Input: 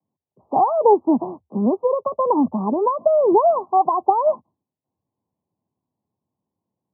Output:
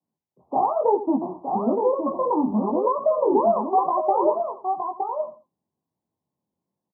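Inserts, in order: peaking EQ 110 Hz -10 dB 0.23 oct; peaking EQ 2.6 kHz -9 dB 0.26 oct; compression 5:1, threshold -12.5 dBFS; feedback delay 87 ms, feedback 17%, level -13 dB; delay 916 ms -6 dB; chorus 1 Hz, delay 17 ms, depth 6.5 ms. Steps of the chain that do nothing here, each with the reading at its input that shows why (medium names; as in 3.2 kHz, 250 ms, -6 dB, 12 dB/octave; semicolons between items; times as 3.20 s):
peaking EQ 2.6 kHz: input has nothing above 1.3 kHz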